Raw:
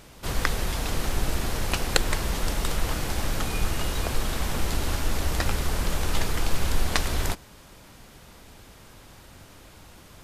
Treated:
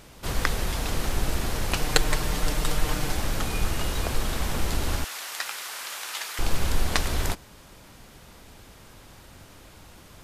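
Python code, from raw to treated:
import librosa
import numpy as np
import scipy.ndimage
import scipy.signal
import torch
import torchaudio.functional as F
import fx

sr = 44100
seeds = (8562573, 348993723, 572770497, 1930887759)

y = fx.comb(x, sr, ms=6.6, depth=0.53, at=(1.76, 3.17))
y = fx.highpass(y, sr, hz=1200.0, slope=12, at=(5.04, 6.39))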